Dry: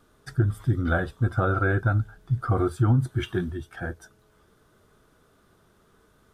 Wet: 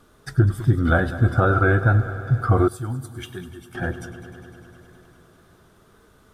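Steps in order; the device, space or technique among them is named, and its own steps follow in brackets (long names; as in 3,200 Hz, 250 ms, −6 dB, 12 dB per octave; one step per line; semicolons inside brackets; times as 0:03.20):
multi-head tape echo (echo machine with several playback heads 101 ms, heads first and second, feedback 75%, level −18 dB; tape wow and flutter 23 cents)
0:02.68–0:03.75: first-order pre-emphasis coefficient 0.8
level +5.5 dB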